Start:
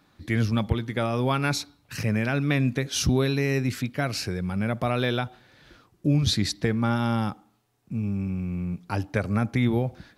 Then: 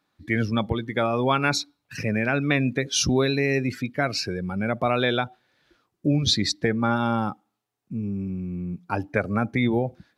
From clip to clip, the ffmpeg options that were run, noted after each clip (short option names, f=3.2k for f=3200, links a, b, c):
-af "afftdn=nr=15:nf=-35,lowshelf=f=170:g=-12,volume=5dB"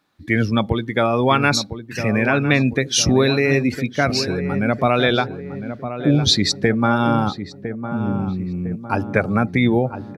-filter_complex "[0:a]asplit=2[a][b];[b]adelay=1006,lowpass=f=1.2k:p=1,volume=-9.5dB,asplit=2[c][d];[d]adelay=1006,lowpass=f=1.2k:p=1,volume=0.53,asplit=2[e][f];[f]adelay=1006,lowpass=f=1.2k:p=1,volume=0.53,asplit=2[g][h];[h]adelay=1006,lowpass=f=1.2k:p=1,volume=0.53,asplit=2[i][j];[j]adelay=1006,lowpass=f=1.2k:p=1,volume=0.53,asplit=2[k][l];[l]adelay=1006,lowpass=f=1.2k:p=1,volume=0.53[m];[a][c][e][g][i][k][m]amix=inputs=7:normalize=0,volume=5.5dB"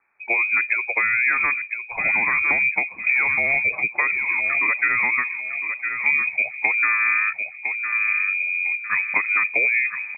-filter_complex "[0:a]acrossover=split=170|790[a][b][c];[a]acompressor=threshold=-30dB:ratio=4[d];[b]acompressor=threshold=-20dB:ratio=4[e];[c]acompressor=threshold=-26dB:ratio=4[f];[d][e][f]amix=inputs=3:normalize=0,lowshelf=f=94:g=7.5,lowpass=f=2.2k:t=q:w=0.5098,lowpass=f=2.2k:t=q:w=0.6013,lowpass=f=2.2k:t=q:w=0.9,lowpass=f=2.2k:t=q:w=2.563,afreqshift=-2600"